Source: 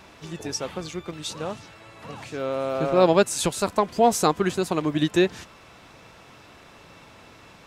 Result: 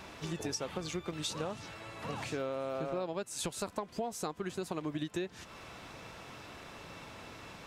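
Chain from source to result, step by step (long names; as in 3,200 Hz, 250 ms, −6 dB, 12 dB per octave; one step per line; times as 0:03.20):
downward compressor 16 to 1, threshold −33 dBFS, peak gain reduction 21.5 dB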